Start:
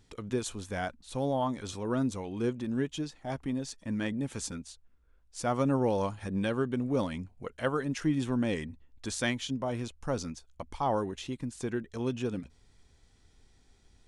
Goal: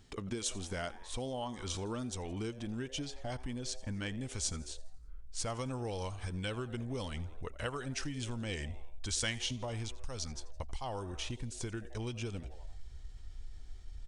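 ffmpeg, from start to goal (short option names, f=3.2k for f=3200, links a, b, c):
-filter_complex "[0:a]asplit=5[a][b][c][d][e];[b]adelay=85,afreqshift=140,volume=-20dB[f];[c]adelay=170,afreqshift=280,volume=-25.8dB[g];[d]adelay=255,afreqshift=420,volume=-31.7dB[h];[e]adelay=340,afreqshift=560,volume=-37.5dB[i];[a][f][g][h][i]amix=inputs=5:normalize=0,asetrate=41625,aresample=44100,atempo=1.05946,asubboost=boost=8:cutoff=69,acrossover=split=2500[j][k];[j]acompressor=threshold=-39dB:ratio=6[l];[l][k]amix=inputs=2:normalize=0,volume=2.5dB"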